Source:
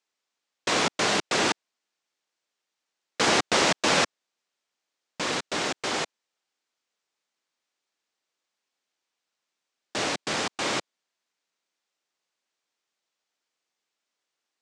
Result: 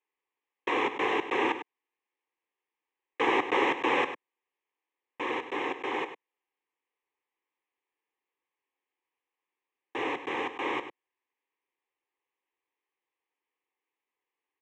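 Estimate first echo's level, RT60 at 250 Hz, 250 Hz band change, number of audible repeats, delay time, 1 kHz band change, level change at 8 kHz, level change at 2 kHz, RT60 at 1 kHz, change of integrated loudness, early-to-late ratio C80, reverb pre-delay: -11.0 dB, no reverb, -2.5 dB, 1, 100 ms, -1.5 dB, -25.5 dB, -3.5 dB, no reverb, -4.5 dB, no reverb, no reverb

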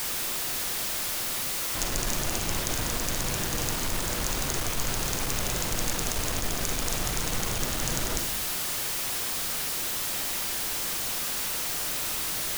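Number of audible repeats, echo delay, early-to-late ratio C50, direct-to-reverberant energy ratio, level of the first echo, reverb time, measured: no echo, no echo, 7.0 dB, 6.0 dB, no echo, 0.80 s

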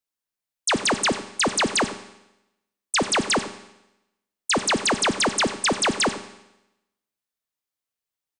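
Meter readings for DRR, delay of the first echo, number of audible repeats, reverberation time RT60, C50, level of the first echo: 9.5 dB, 93 ms, 1, 0.90 s, 11.5 dB, -15.5 dB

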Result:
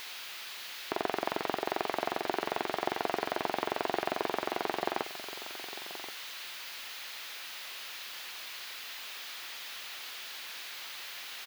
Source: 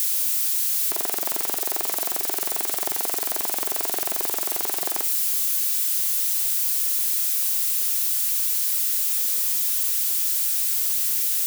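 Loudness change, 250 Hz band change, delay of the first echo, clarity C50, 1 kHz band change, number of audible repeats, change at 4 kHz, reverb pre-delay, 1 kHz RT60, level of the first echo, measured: -16.0 dB, +2.0 dB, 1078 ms, no reverb, +1.5 dB, 1, -7.0 dB, no reverb, no reverb, -14.0 dB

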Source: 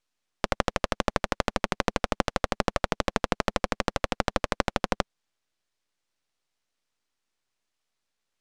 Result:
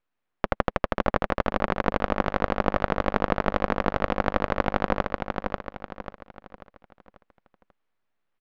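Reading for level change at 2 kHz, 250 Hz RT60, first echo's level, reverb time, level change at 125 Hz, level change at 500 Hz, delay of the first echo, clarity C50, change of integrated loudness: +1.5 dB, no reverb, -4.5 dB, no reverb, +3.5 dB, +3.5 dB, 540 ms, no reverb, +2.5 dB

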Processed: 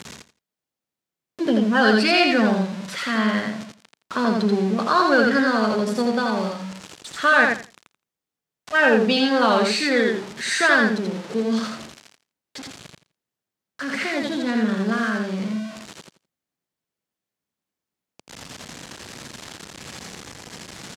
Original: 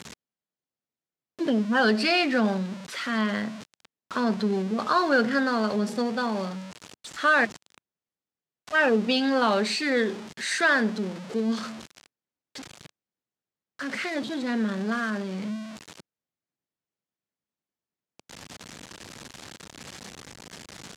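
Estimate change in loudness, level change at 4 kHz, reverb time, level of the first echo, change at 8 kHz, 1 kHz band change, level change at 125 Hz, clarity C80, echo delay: +5.0 dB, +5.5 dB, no reverb, -3.0 dB, +5.5 dB, +5.5 dB, +5.5 dB, no reverb, 84 ms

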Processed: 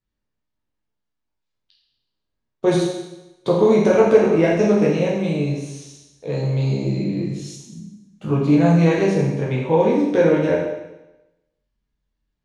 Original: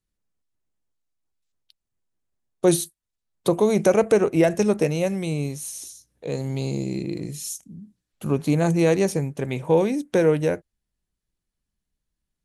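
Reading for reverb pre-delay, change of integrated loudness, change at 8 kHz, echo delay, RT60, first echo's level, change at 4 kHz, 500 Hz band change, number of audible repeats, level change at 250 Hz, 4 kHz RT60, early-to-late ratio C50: 10 ms, +4.0 dB, -7.5 dB, no echo, 0.95 s, no echo, +1.5 dB, +4.0 dB, no echo, +5.0 dB, 0.95 s, 2.0 dB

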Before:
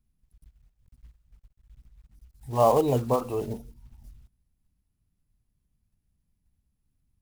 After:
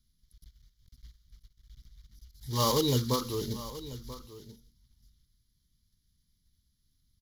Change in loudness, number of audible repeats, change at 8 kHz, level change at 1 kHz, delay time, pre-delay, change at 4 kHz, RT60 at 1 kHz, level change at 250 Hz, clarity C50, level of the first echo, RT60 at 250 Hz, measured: -5.5 dB, 1, +8.5 dB, -7.0 dB, 985 ms, no reverb, +13.5 dB, no reverb, -1.5 dB, no reverb, -15.5 dB, no reverb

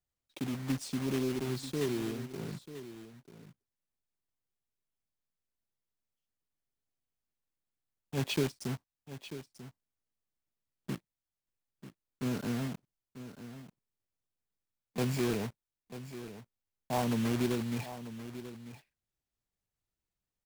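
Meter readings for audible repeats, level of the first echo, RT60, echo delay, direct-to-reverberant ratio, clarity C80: 1, -13.0 dB, no reverb, 941 ms, no reverb, no reverb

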